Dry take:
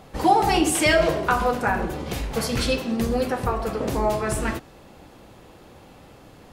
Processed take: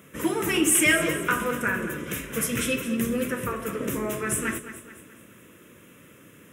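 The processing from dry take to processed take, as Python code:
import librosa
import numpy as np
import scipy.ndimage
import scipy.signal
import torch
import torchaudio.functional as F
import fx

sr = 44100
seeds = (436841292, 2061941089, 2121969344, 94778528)

p1 = scipy.signal.sosfilt(scipy.signal.butter(2, 150.0, 'highpass', fs=sr, output='sos'), x)
p2 = fx.high_shelf(p1, sr, hz=4100.0, db=9.0)
p3 = fx.fixed_phaser(p2, sr, hz=1900.0, stages=4)
y = p3 + fx.echo_feedback(p3, sr, ms=214, feedback_pct=46, wet_db=-12.5, dry=0)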